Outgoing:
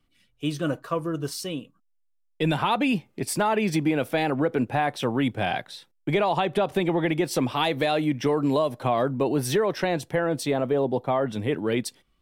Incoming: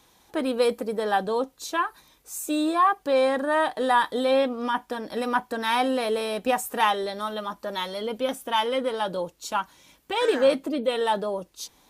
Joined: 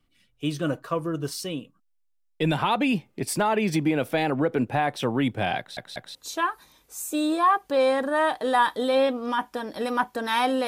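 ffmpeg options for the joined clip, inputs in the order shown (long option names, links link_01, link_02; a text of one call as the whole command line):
ffmpeg -i cue0.wav -i cue1.wav -filter_complex "[0:a]apad=whole_dur=10.67,atrim=end=10.67,asplit=3[link_01][link_02][link_03];[link_01]atrim=end=5.772[link_04];[link_02]atrim=start=5.578:end=5.772[link_05];[link_03]atrim=start=5.578:end=5.772[link_06];[1:a]atrim=start=1.508:end=6.03[link_07];[link_04][link_05]acrossfade=duration=0.004:curve1=hsin:curve2=hsin[link_08];[link_08][link_06]acrossfade=duration=0.004:curve1=hsin:curve2=hsin[link_09];[link_09][link_07]acrossfade=duration=0.004:curve1=hsin:curve2=hsin" out.wav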